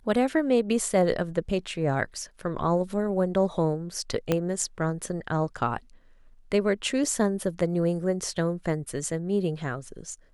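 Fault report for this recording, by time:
4.32 s: pop -10 dBFS

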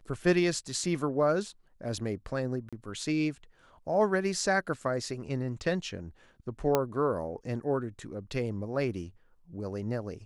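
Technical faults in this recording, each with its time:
2.69–2.73 s: dropout 36 ms
6.75 s: pop -11 dBFS

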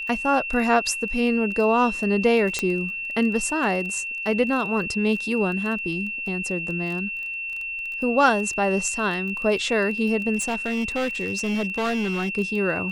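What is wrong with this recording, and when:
crackle 18 per s -30 dBFS
whine 2.7 kHz -28 dBFS
2.59 s: pop -9 dBFS
10.36–12.29 s: clipped -21 dBFS

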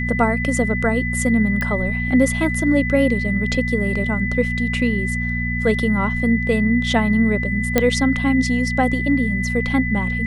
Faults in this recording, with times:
hum 60 Hz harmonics 4 -24 dBFS
whine 2 kHz -24 dBFS
1.61 s: pop -11 dBFS
7.78 s: pop -1 dBFS

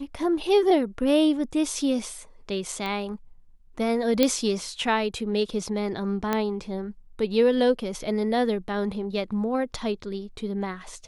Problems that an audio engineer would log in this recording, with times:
2.86 s: pop -19 dBFS
4.23 s: pop -6 dBFS
6.33 s: pop -10 dBFS

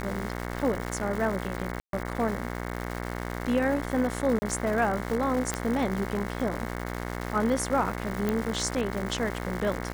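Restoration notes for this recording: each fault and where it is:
buzz 60 Hz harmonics 37 -34 dBFS
crackle 360 per s -32 dBFS
1.80–1.93 s: dropout 132 ms
4.39–4.42 s: dropout 30 ms
5.54 s: pop -12 dBFS
8.29 s: pop -14 dBFS

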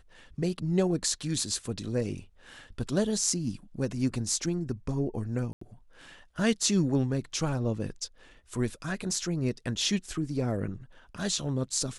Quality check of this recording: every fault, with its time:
5.53–5.61 s: dropout 84 ms

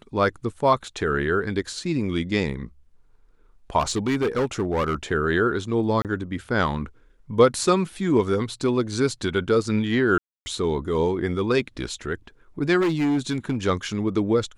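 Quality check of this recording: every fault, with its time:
3.79–4.95 s: clipped -18.5 dBFS
6.02–6.05 s: dropout 28 ms
10.18–10.46 s: dropout 280 ms
12.80–13.56 s: clipped -18.5 dBFS

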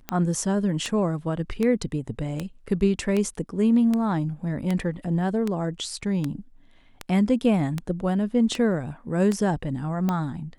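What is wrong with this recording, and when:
tick 78 rpm -13 dBFS

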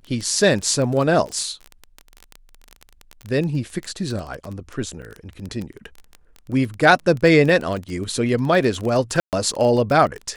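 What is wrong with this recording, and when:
crackle 20 per s -24 dBFS
5.02–5.03 s: dropout 5.7 ms
9.20–9.33 s: dropout 128 ms

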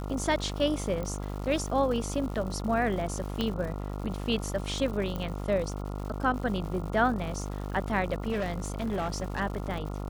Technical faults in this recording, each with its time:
buzz 50 Hz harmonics 28 -35 dBFS
crackle 210 per s -38 dBFS
1.03 s: pop -23 dBFS
3.41 s: pop -16 dBFS
5.16 s: pop -21 dBFS
8.31–9.41 s: clipped -26.5 dBFS

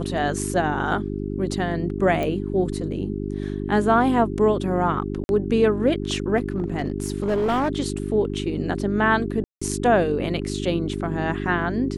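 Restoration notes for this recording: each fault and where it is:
hum 50 Hz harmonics 8 -28 dBFS
2.23 s: pop -14 dBFS
5.24–5.29 s: dropout 51 ms
6.37–7.69 s: clipped -18 dBFS
9.44–9.62 s: dropout 175 ms

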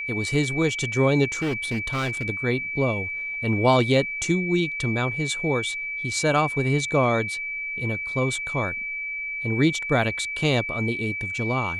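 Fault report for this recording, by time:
whine 2.3 kHz -28 dBFS
1.34–2.30 s: clipped -22 dBFS

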